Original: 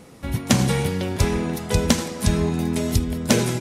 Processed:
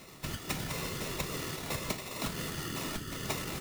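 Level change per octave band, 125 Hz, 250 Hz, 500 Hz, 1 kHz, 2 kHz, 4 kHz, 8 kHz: -18.0, -19.0, -16.0, -10.5, -9.0, -10.0, -11.5 dB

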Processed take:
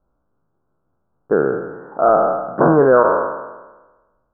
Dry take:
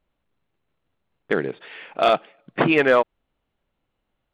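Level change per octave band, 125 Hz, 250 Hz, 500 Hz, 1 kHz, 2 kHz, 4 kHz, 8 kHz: +7.5 dB, +5.5 dB, +7.0 dB, +7.0 dB, -2.0 dB, under -40 dB, n/a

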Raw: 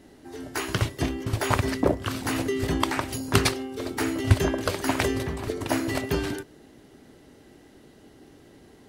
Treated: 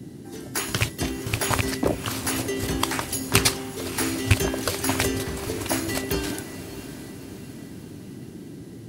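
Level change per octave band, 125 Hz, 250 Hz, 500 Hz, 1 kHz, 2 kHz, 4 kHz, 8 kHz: -0.5, -0.5, -1.0, -0.5, +2.0, +4.5, +8.0 dB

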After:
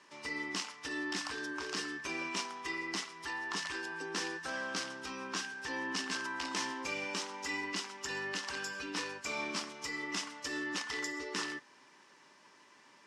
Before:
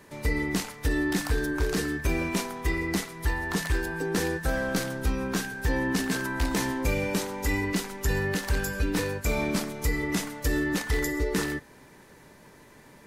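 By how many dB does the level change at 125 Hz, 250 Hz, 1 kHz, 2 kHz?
-25.5, -14.5, -5.5, -6.0 dB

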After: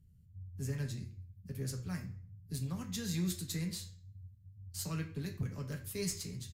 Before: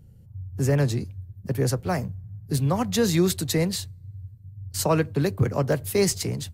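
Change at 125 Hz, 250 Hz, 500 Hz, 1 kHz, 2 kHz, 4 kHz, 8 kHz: -13.5, -14.0, -22.5, -23.5, -15.5, -13.0, -12.0 dB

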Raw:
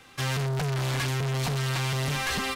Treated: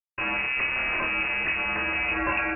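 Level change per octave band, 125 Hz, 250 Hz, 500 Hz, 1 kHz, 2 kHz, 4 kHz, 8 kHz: -19.0 dB, -1.0 dB, -2.0 dB, +2.5 dB, +9.0 dB, -5.0 dB, under -40 dB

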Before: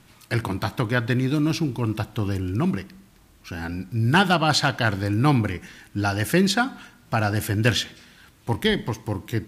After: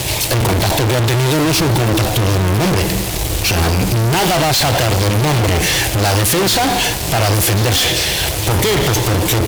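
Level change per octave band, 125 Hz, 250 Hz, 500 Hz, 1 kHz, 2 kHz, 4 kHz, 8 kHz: +9.5, +5.5, +11.0, +8.5, +7.5, +12.5, +18.5 dB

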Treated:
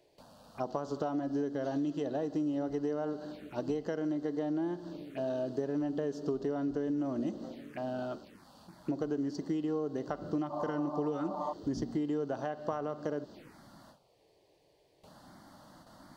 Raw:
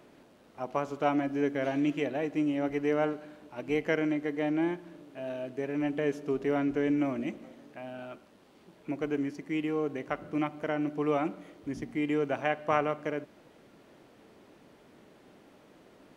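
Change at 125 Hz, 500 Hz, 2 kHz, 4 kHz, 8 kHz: -1.5 dB, -3.5 dB, -12.5 dB, -6.0 dB, n/a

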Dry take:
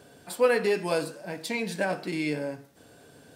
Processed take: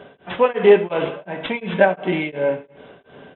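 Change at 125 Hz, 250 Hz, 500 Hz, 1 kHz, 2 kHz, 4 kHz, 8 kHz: +7.5 dB, +7.0 dB, +10.0 dB, +10.0 dB, +7.0 dB, +5.0 dB, under -35 dB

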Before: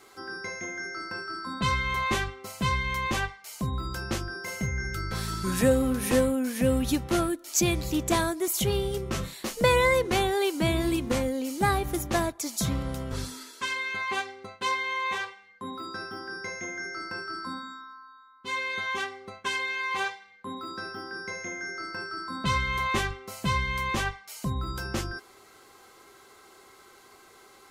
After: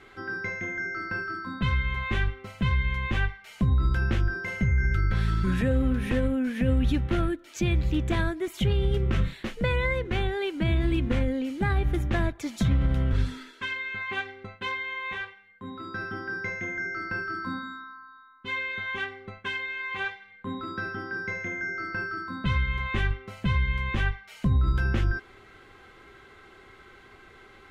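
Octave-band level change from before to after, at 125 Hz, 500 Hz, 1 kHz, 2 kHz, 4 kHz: +6.5, -4.5, -5.5, +1.0, -5.0 dB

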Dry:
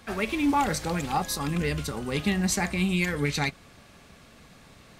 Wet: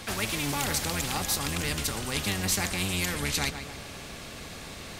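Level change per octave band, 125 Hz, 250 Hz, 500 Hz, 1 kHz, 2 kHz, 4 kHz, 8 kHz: -3.5, -7.5, -4.5, -5.5, -1.0, +4.5, +4.5 dB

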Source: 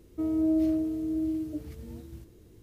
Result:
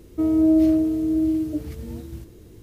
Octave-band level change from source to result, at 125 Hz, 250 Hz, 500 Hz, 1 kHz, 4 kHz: +8.5 dB, +8.5 dB, +8.5 dB, n/a, n/a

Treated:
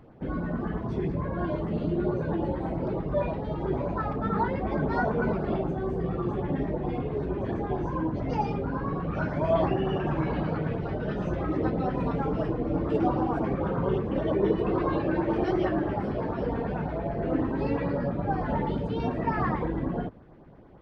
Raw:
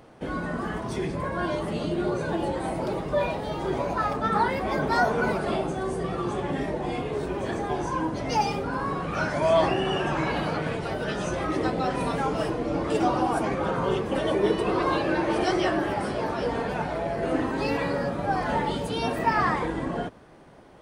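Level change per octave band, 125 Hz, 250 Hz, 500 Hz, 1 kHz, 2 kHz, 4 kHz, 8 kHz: +3.0 dB, +0.5 dB, -2.5 dB, -5.5 dB, -8.0 dB, -13.5 dB, under -20 dB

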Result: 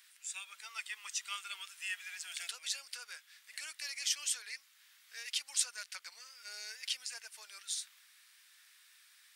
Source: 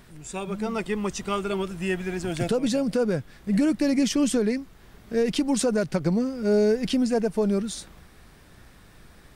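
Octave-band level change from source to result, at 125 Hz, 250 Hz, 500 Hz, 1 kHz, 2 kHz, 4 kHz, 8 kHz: under -40 dB, under -40 dB, under -40 dB, -18.5 dB, -7.0 dB, -3.0 dB, -2.0 dB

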